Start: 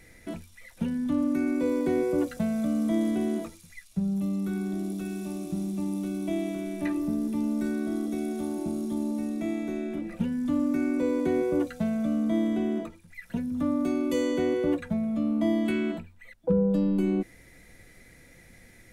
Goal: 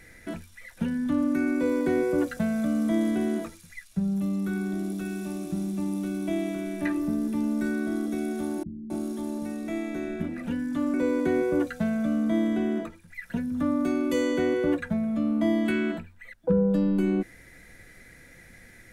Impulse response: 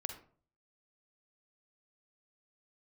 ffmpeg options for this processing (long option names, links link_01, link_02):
-filter_complex "[0:a]equalizer=frequency=1600:width=2.6:gain=7.5,asettb=1/sr,asplit=3[link_01][link_02][link_03];[link_01]atrim=end=8.634[link_04];[link_02]atrim=start=8.63:end=10.94,asetpts=PTS-STARTPTS,afade=type=in:duration=0.004:curve=qsin,afade=type=out:start_time=2.306:duration=0.004:curve=qsin,acrossover=split=210[link_05][link_06];[link_06]adelay=270[link_07];[link_05][link_07]amix=inputs=2:normalize=0,atrim=end_sample=101871[link_08];[link_03]atrim=start=10.936[link_09];[link_04][link_08]acrossfade=duration=0.004:curve1=hsin:curve2=qsin[link_10];[link_10][link_09]acrossfade=duration=0.004:curve1=qsin:curve2=hsin,volume=1dB"